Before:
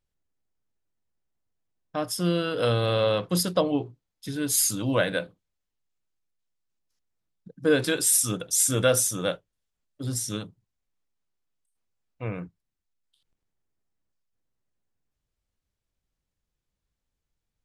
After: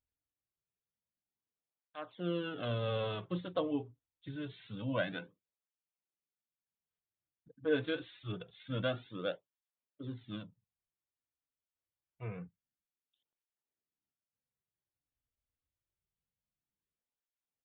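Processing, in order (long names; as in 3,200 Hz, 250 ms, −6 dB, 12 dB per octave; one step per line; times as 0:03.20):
downsampling to 8,000 Hz
through-zero flanger with one copy inverted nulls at 0.26 Hz, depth 5.8 ms
level −8.5 dB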